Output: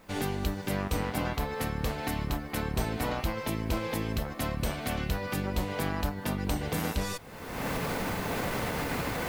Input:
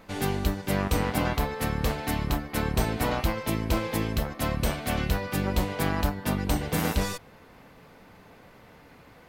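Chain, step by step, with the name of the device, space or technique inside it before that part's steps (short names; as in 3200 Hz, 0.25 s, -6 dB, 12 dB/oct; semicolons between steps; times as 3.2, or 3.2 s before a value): cheap recorder with automatic gain (white noise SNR 37 dB; recorder AGC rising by 40 dB/s); gain -5 dB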